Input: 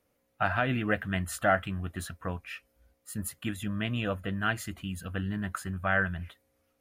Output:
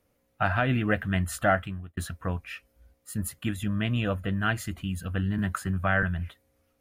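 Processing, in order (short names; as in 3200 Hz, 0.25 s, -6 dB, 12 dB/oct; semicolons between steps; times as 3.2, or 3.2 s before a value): low shelf 160 Hz +6.5 dB; 1.49–1.97 fade out; 5.38–6.03 three-band squash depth 40%; gain +1.5 dB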